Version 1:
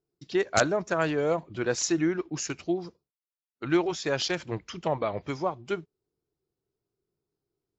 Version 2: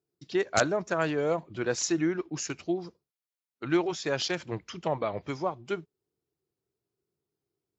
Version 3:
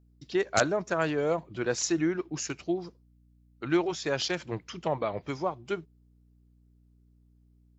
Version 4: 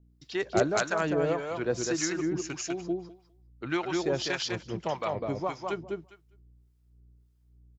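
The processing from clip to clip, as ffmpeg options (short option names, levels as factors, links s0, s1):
-af "highpass=68,volume=0.841"
-af "aeval=exprs='val(0)+0.001*(sin(2*PI*60*n/s)+sin(2*PI*2*60*n/s)/2+sin(2*PI*3*60*n/s)/3+sin(2*PI*4*60*n/s)/4+sin(2*PI*5*60*n/s)/5)':c=same"
-filter_complex "[0:a]asplit=2[s0][s1];[s1]aecho=0:1:202|404|606:0.668|0.1|0.015[s2];[s0][s2]amix=inputs=2:normalize=0,acrossover=split=730[s3][s4];[s3]aeval=exprs='val(0)*(1-0.7/2+0.7/2*cos(2*PI*1.7*n/s))':c=same[s5];[s4]aeval=exprs='val(0)*(1-0.7/2-0.7/2*cos(2*PI*1.7*n/s))':c=same[s6];[s5][s6]amix=inputs=2:normalize=0,volume=1.26"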